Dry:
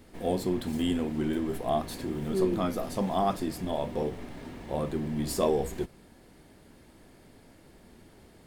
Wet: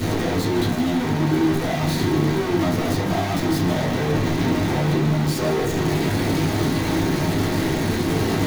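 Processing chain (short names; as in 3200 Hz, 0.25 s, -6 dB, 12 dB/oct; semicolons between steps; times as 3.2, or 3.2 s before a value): infinite clipping; low shelf 270 Hz +8.5 dB; split-band echo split 690 Hz, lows 0.785 s, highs 0.153 s, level -13 dB; reverb RT60 0.40 s, pre-delay 3 ms, DRR -6.5 dB; gain -2 dB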